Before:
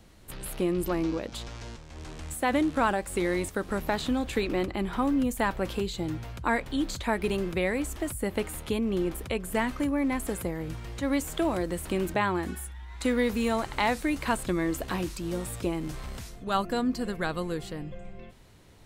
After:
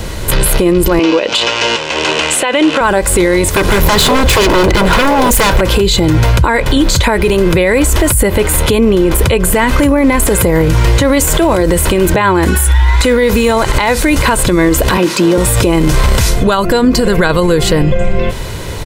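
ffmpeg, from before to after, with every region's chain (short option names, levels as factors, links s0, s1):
-filter_complex "[0:a]asettb=1/sr,asplit=3[s0][s1][s2];[s0]atrim=end=0.994[s3];[s1]atrim=start=0.99:end=2.81,asetpts=PTS-STARTPTS,afade=t=in:d=0.004:c=qsin,afade=t=out:st=1.816:d=0.004:c=qsin,highpass=350,lowpass=6400,equalizer=f=2800:w=3.9:g=11[s4];[s2]atrim=start=2.806[s5];[s3][s4]acrossfade=d=0.004:c1=hsin:c2=qsin[s6];[s6][s5]acrossfade=d=0.004:c1=qsin:c2=hsin,asettb=1/sr,asplit=3[s7][s8][s9];[s7]atrim=end=3.494[s10];[s8]atrim=start=3.49:end=5.61,asetpts=PTS-STARTPTS,afade=t=in:d=0.004:c=qsin,afade=t=out:st=2.116:d=0.004:c=qsin,acompressor=threshold=0.0282:ratio=3:attack=3.2:release=140:knee=1:detection=peak,aeval=exprs='0.0211*(abs(mod(val(0)/0.0211+3,4)-2)-1)':c=same[s11];[s9]atrim=start=5.606[s12];[s10][s11]acrossfade=d=0.004:c1=hsin:c2=qsin[s13];[s13][s12]acrossfade=d=0.004:c1=qsin:c2=hsin,asettb=1/sr,asplit=3[s14][s15][s16];[s14]atrim=end=14.974[s17];[s15]atrim=start=14.97:end=15.38,asetpts=PTS-STARTPTS,afade=t=in:d=0.004:c=qsin,afade=t=out:st=0.406:d=0.004:c=qsin,highpass=f=190:w=0.5412,highpass=f=190:w=1.3066,highshelf=f=5600:g=-11.5[s18];[s16]atrim=start=15.376[s19];[s17][s18]acrossfade=d=0.004:c1=hsin:c2=qsin[s20];[s20][s19]acrossfade=d=0.004:c1=qsin:c2=hsin,aecho=1:1:2:0.39,acompressor=threshold=0.0224:ratio=6,alimiter=level_in=50.1:limit=0.891:release=50:level=0:latency=1,volume=0.891"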